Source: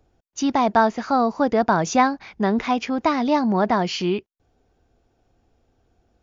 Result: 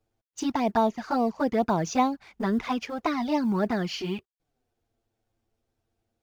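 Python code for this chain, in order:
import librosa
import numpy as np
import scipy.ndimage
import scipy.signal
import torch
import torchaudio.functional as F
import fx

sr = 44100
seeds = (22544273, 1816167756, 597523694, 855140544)

y = fx.law_mismatch(x, sr, coded='A')
y = fx.env_flanger(y, sr, rest_ms=9.0, full_db=-14.0)
y = y * 10.0 ** (-2.5 / 20.0)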